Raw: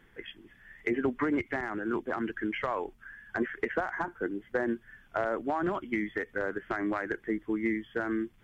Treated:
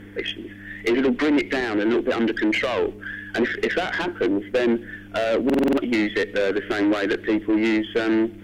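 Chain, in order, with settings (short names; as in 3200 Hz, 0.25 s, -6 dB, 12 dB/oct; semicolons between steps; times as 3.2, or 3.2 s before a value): tube stage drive 34 dB, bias 0.35; on a send at -22.5 dB: reverb RT60 0.90 s, pre-delay 3 ms; on the sum: dynamic EQ 3100 Hz, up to +7 dB, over -60 dBFS, Q 1.3; in parallel at -3 dB: limiter -36.5 dBFS, peak gain reduction 9.5 dB; on the sum: buzz 100 Hz, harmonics 3, -51 dBFS -6 dB/oct; graphic EQ 125/250/500/1000/2000 Hz -9/+7/+8/-5/+3 dB; stuck buffer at 5.45, samples 2048, times 6; gain +8.5 dB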